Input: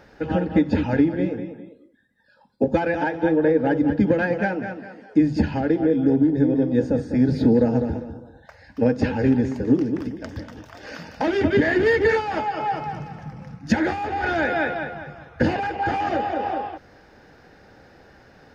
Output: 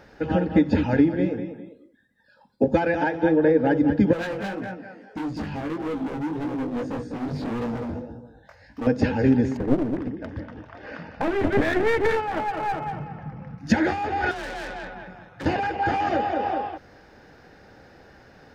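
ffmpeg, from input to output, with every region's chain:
ffmpeg -i in.wav -filter_complex "[0:a]asettb=1/sr,asplit=3[link_01][link_02][link_03];[link_01]atrim=end=4.134[link_04];[link_02]atrim=start=4.13:end=8.87,asetpts=PTS-STARTPTS,afade=type=in:duration=0.004:curve=qsin,afade=type=out:start_time=4.736:duration=0.004:curve=qsin,volume=24dB,asoftclip=hard,volume=-24dB,flanger=delay=16.5:depth=4.5:speed=1.7[link_05];[link_03]atrim=start=8.866[link_06];[link_04][link_05]acrossfade=duration=0.004:curve1=hsin:curve2=qsin[link_07];[link_07][link_06]acrossfade=duration=0.004:curve1=qsin:curve2=hsin,asettb=1/sr,asplit=3[link_08][link_09][link_10];[link_08]atrim=end=9.574[link_11];[link_09]atrim=start=9.57:end=13.58,asetpts=PTS-STARTPTS,afade=type=in:duration=0.004:curve=qsin,afade=type=out:start_time=4.006:duration=0.004:curve=qsin,lowpass=2300,aeval=exprs='clip(val(0),-1,0.0447)':channel_layout=same[link_12];[link_10]atrim=start=13.576[link_13];[link_11][link_12]acrossfade=duration=0.004:curve1=hsin:curve2=qsin[link_14];[link_14][link_13]acrossfade=duration=0.004:curve1=qsin:curve2=hsin,asettb=1/sr,asplit=3[link_15][link_16][link_17];[link_15]atrim=end=14.314[link_18];[link_16]atrim=start=14.31:end=15.46,asetpts=PTS-STARTPTS,afade=type=in:duration=0.004:curve=qsin,afade=type=out:start_time=1.146:duration=0.004:curve=qsin,aeval=exprs='(tanh(31.6*val(0)+0.4)-tanh(0.4))/31.6':channel_layout=same,tremolo=f=190:d=0.4,afreqshift=36[link_19];[link_17]atrim=start=15.456[link_20];[link_18][link_19]acrossfade=duration=0.004:curve1=hsin:curve2=qsin[link_21];[link_21][link_20]acrossfade=duration=0.004:curve1=qsin:curve2=hsin" out.wav

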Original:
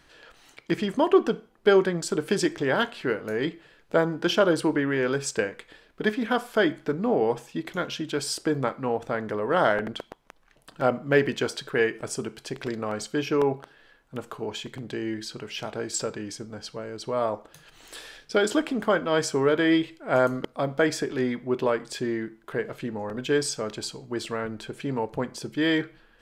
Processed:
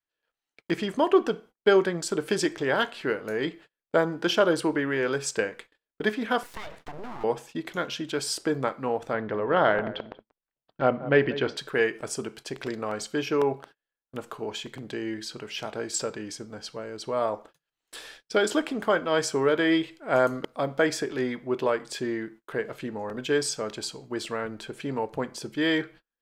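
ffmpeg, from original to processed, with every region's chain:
ffmpeg -i in.wav -filter_complex "[0:a]asettb=1/sr,asplit=3[link_01][link_02][link_03];[link_01]atrim=end=6.434[link_04];[link_02]atrim=start=6.43:end=7.24,asetpts=PTS-STARTPTS,afade=type=in:duration=0.004:curve=qsin,afade=type=out:start_time=0.806:duration=0.004:curve=qsin,acompressor=threshold=-29dB:ratio=16:attack=3.2:release=140:knee=1:detection=peak,aeval=exprs='abs(val(0))':channel_layout=same[link_05];[link_03]atrim=start=7.236[link_06];[link_04][link_05]acrossfade=duration=0.004:curve1=hsin:curve2=qsin[link_07];[link_07][link_06]acrossfade=duration=0.004:curve1=qsin:curve2=hsin,asettb=1/sr,asplit=3[link_08][link_09][link_10];[link_08]atrim=end=9.134[link_11];[link_09]atrim=start=9.13:end=11.57,asetpts=PTS-STARTPTS,afade=type=in:duration=0.004:curve=qsin,afade=type=out:start_time=2.436:duration=0.004:curve=qsin,lowpass=frequency=4000:width=0.5412,lowpass=frequency=4000:width=1.3066,lowshelf=frequency=230:gain=5,asplit=2[link_12][link_13];[link_13]adelay=188,lowpass=frequency=910:poles=1,volume=-13dB,asplit=2[link_14][link_15];[link_15]adelay=188,lowpass=frequency=910:poles=1,volume=0.18[link_16];[link_12][link_14][link_16]amix=inputs=3:normalize=0,atrim=end_sample=107604[link_17];[link_10]atrim=start=11.566[link_18];[link_11][link_17]acrossfade=duration=0.004:curve1=hsin:curve2=qsin[link_19];[link_19][link_18]acrossfade=duration=0.004:curve1=qsin:curve2=hsin,adynamicequalizer=threshold=0.0158:dfrequency=230:dqfactor=2.3:tfrequency=230:tqfactor=2.3:attack=5:release=100:ratio=0.375:range=1.5:mode=cutabove:tftype=bell,agate=range=-35dB:threshold=-45dB:ratio=16:detection=peak,lowshelf=frequency=180:gain=-6" out.wav

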